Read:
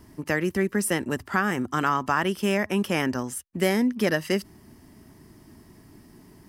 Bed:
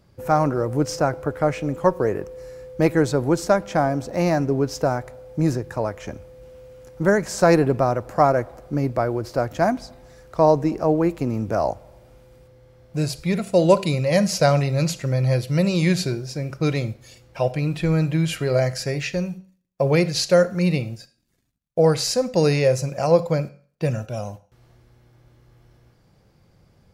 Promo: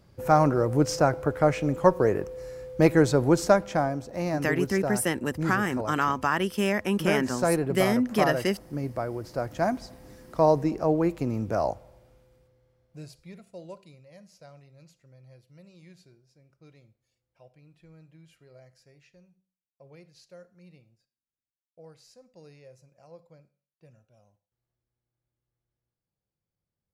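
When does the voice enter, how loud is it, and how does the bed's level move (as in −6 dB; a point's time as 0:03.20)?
4.15 s, −1.5 dB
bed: 0:03.49 −1 dB
0:04.07 −9 dB
0:09.20 −9 dB
0:09.90 −4.5 dB
0:11.75 −4.5 dB
0:14.15 −33 dB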